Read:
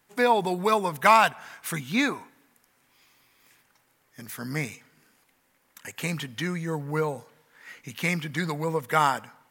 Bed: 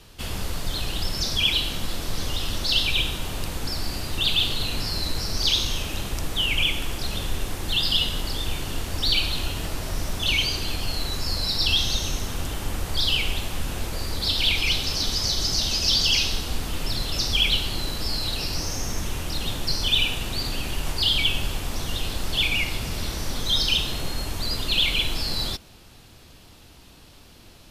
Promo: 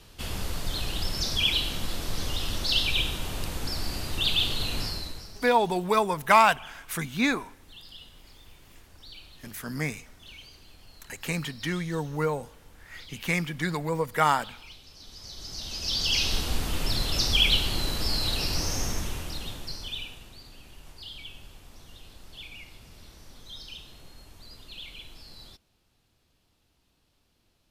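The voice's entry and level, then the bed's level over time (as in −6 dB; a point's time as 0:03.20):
5.25 s, −0.5 dB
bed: 0:04.84 −3 dB
0:05.55 −25 dB
0:14.93 −25 dB
0:16.37 −0.5 dB
0:18.83 −0.5 dB
0:20.42 −21 dB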